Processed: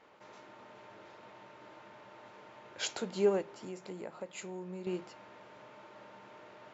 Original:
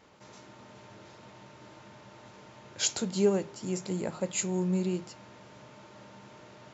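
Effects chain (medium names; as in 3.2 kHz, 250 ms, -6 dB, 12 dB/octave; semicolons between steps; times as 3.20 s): tone controls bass -13 dB, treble -13 dB; 3.41–4.87 s: compression 3:1, threshold -42 dBFS, peak gain reduction 10.5 dB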